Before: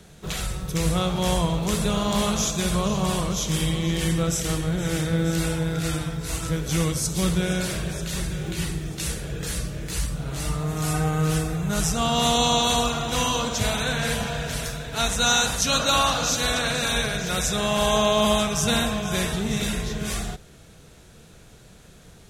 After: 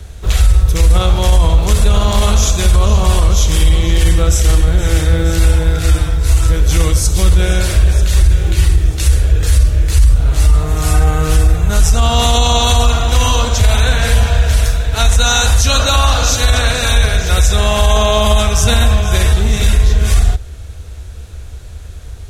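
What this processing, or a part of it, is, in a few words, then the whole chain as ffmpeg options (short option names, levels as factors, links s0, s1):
car stereo with a boomy subwoofer: -af "lowshelf=f=110:t=q:w=3:g=12.5,alimiter=limit=0.299:level=0:latency=1:release=23,volume=2.66"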